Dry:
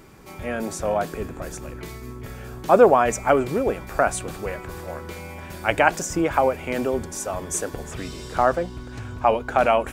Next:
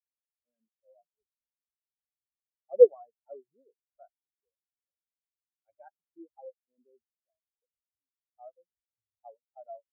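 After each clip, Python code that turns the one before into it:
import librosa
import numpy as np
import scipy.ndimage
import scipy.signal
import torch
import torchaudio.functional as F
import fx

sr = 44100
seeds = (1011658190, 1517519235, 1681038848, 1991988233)

y = fx.spectral_expand(x, sr, expansion=4.0)
y = y * librosa.db_to_amplitude(-4.5)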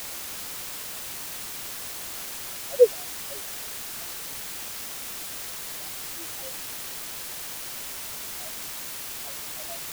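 y = fx.quant_dither(x, sr, seeds[0], bits=6, dither='triangular')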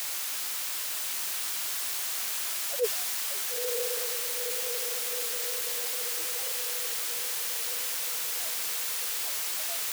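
y = fx.highpass(x, sr, hz=1200.0, slope=6)
y = fx.echo_diffused(y, sr, ms=955, feedback_pct=63, wet_db=-7)
y = fx.transient(y, sr, attack_db=-11, sustain_db=1)
y = y * librosa.db_to_amplitude(3.5)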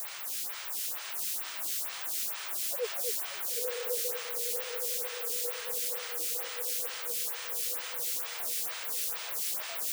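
y = fx.echo_alternate(x, sr, ms=248, hz=2000.0, feedback_pct=74, wet_db=-4.0)
y = fx.stagger_phaser(y, sr, hz=2.2)
y = y * librosa.db_to_amplitude(-1.5)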